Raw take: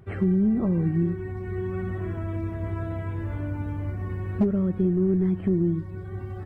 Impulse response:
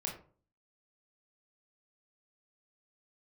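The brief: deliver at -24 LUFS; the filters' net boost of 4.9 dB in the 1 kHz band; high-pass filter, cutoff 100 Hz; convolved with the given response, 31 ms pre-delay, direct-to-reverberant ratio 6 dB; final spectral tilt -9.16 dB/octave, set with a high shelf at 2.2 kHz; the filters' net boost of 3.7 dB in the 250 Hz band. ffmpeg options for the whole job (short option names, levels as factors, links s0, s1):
-filter_complex "[0:a]highpass=100,equalizer=f=250:t=o:g=6,equalizer=f=1000:t=o:g=6.5,highshelf=f=2200:g=-3,asplit=2[s0][s1];[1:a]atrim=start_sample=2205,adelay=31[s2];[s1][s2]afir=irnorm=-1:irlink=0,volume=0.447[s3];[s0][s3]amix=inputs=2:normalize=0,volume=0.75"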